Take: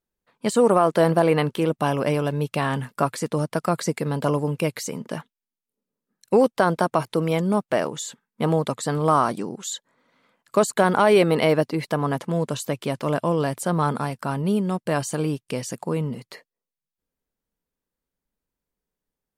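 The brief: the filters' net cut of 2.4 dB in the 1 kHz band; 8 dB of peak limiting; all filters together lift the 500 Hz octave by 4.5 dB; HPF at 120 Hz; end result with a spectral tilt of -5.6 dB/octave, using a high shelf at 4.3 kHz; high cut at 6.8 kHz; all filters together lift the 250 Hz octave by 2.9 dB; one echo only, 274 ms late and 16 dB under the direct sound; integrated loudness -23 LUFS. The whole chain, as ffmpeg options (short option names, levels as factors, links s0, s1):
-af "highpass=120,lowpass=6800,equalizer=f=250:t=o:g=3,equalizer=f=500:t=o:g=6,equalizer=f=1000:t=o:g=-6.5,highshelf=f=4300:g=8,alimiter=limit=0.282:level=0:latency=1,aecho=1:1:274:0.158"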